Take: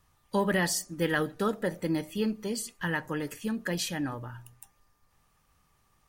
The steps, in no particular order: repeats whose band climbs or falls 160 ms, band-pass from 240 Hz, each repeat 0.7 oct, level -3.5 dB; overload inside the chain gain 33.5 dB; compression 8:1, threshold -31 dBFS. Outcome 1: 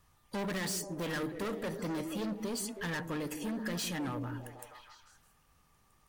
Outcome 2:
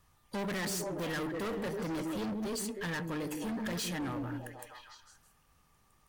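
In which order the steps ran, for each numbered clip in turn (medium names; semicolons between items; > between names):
overload inside the chain > repeats whose band climbs or falls > compression; repeats whose band climbs or falls > overload inside the chain > compression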